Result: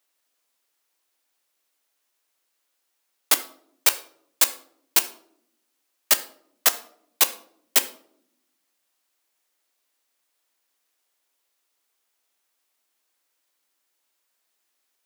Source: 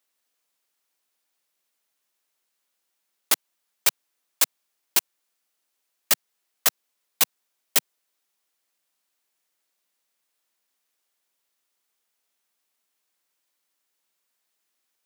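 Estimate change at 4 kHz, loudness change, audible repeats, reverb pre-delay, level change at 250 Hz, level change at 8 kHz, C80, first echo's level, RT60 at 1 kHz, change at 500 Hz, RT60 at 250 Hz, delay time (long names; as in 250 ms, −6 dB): +2.5 dB, +2.5 dB, no echo audible, 9 ms, +2.0 dB, +2.5 dB, 18.5 dB, no echo audible, 0.55 s, +3.0 dB, 1.5 s, no echo audible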